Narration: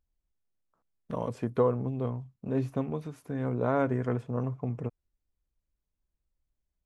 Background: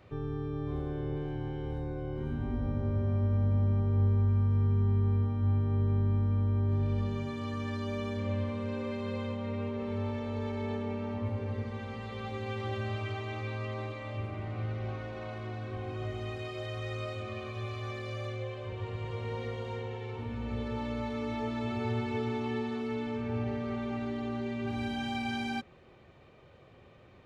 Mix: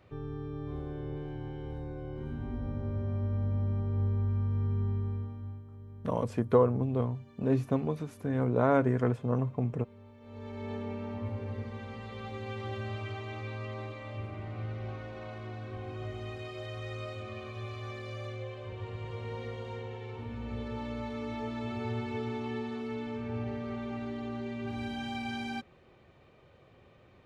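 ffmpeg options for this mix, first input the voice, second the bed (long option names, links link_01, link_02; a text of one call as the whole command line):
ffmpeg -i stem1.wav -i stem2.wav -filter_complex "[0:a]adelay=4950,volume=2dB[link_01];[1:a]volume=13.5dB,afade=type=out:start_time=4.83:duration=0.81:silence=0.158489,afade=type=in:start_time=10.19:duration=0.59:silence=0.141254[link_02];[link_01][link_02]amix=inputs=2:normalize=0" out.wav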